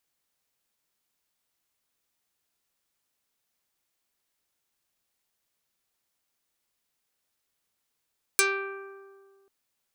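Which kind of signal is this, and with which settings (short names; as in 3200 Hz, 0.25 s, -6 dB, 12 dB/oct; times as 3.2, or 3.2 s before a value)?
plucked string G4, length 1.09 s, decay 1.87 s, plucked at 0.41, dark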